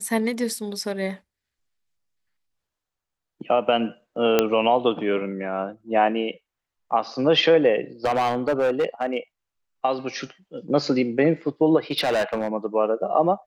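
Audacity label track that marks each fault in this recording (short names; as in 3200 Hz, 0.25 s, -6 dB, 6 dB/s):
4.390000	4.390000	pop -4 dBFS
8.050000	9.180000	clipped -17 dBFS
11.910000	12.480000	clipped -18.5 dBFS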